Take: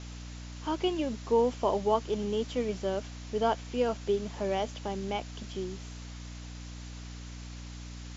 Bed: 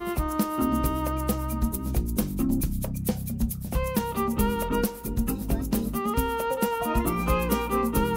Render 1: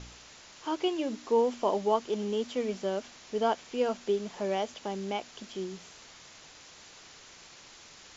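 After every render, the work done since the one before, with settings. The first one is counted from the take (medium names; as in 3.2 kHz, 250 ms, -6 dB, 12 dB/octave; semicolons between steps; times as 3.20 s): de-hum 60 Hz, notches 5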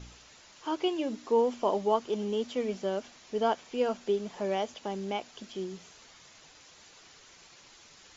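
noise reduction 6 dB, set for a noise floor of -53 dBFS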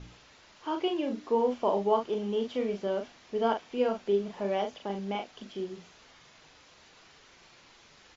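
distance through air 120 m; doubling 40 ms -5.5 dB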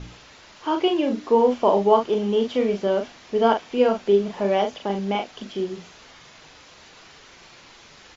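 trim +9 dB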